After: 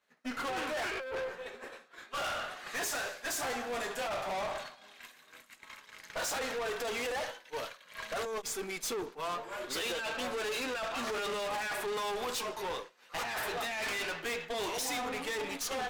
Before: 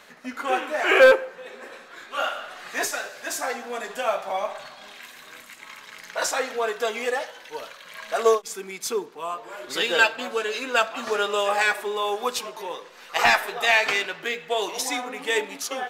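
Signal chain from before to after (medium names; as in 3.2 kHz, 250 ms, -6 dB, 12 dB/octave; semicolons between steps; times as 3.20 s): expander -34 dBFS; compressor with a negative ratio -26 dBFS, ratio -1; valve stage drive 33 dB, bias 0.45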